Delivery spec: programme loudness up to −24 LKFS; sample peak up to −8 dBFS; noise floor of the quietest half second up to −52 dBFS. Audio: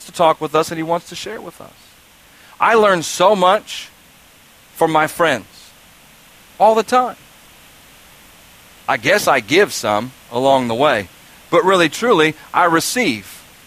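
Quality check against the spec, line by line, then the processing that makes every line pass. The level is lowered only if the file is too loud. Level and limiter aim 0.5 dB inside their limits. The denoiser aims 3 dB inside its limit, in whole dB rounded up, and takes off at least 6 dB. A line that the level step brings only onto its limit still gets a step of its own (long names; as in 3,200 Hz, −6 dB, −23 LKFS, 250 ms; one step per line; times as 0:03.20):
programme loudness −15.5 LKFS: out of spec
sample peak −1.5 dBFS: out of spec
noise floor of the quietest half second −47 dBFS: out of spec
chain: level −9 dB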